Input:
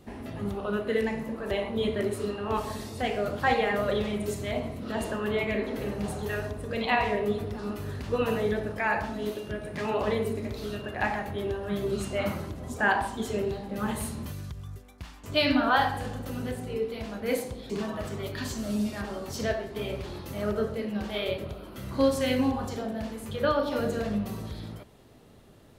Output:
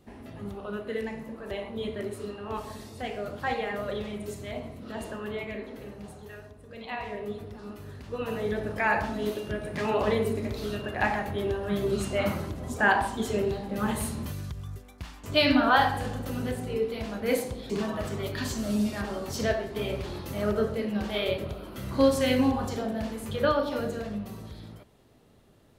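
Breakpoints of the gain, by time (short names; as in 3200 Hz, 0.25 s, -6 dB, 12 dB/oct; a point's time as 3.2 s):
5.21 s -5.5 dB
6.57 s -14.5 dB
7.24 s -7.5 dB
8.11 s -7.5 dB
8.8 s +2 dB
23.39 s +2 dB
24.1 s -5 dB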